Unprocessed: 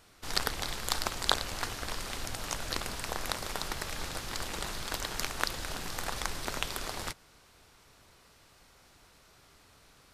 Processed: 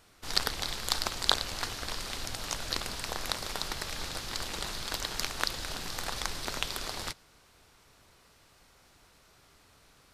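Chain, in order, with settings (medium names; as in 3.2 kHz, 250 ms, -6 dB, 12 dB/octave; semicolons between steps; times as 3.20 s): dynamic bell 4.3 kHz, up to +5 dB, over -49 dBFS, Q 1.3; trim -1 dB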